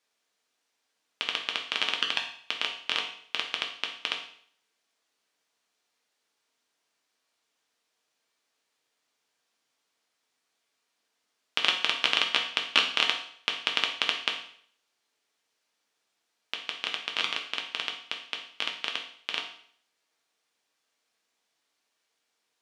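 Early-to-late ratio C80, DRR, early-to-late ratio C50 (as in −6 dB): 11.0 dB, 1.0 dB, 7.5 dB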